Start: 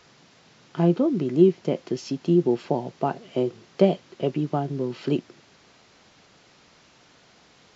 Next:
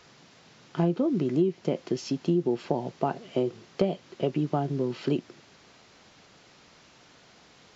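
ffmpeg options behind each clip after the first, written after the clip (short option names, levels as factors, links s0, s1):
-af "acompressor=threshold=0.0891:ratio=5"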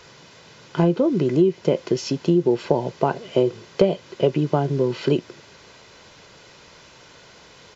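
-af "aecho=1:1:2:0.39,volume=2.37"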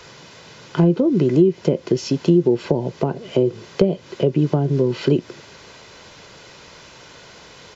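-filter_complex "[0:a]acrossover=split=430[s0][s1];[s1]acompressor=threshold=0.0282:ratio=10[s2];[s0][s2]amix=inputs=2:normalize=0,volume=1.68"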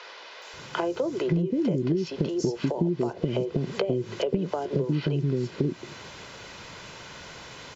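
-filter_complex "[0:a]acrossover=split=440|5200[s0][s1][s2];[s2]adelay=420[s3];[s0]adelay=530[s4];[s4][s1][s3]amix=inputs=3:normalize=0,acompressor=threshold=0.0631:ratio=6,volume=1.19"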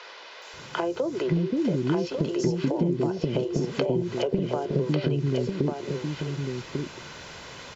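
-af "aecho=1:1:1146:0.562"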